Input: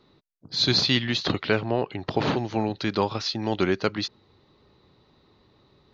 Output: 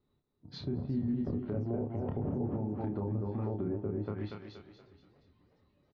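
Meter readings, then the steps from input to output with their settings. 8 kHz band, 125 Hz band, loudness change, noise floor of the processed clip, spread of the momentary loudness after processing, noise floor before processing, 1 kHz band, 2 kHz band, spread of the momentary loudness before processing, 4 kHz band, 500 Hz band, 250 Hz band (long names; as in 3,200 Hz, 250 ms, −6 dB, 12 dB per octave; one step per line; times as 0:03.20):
can't be measured, −4.0 dB, −10.5 dB, −77 dBFS, 9 LU, −62 dBFS, −16.5 dB, −28.0 dB, 8 LU, below −30 dB, −10.5 dB, −6.5 dB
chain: on a send: repeating echo 237 ms, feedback 39%, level −5 dB
on the sum: flanger 0.95 Hz, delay 0.2 ms, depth 3.5 ms, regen +77%
low-shelf EQ 180 Hz +10 dB
treble cut that deepens with the level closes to 500 Hz, closed at −23 dBFS
tuned comb filter 81 Hz, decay 0.19 s, harmonics odd, mix 60%
noise reduction from a noise print of the clip's start 11 dB
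high-shelf EQ 3,200 Hz −11 dB
double-tracking delay 29 ms −3.5 dB
brickwall limiter −25.5 dBFS, peak gain reduction 8.5 dB
feedback echo with a swinging delay time 358 ms, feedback 57%, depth 175 cents, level −22 dB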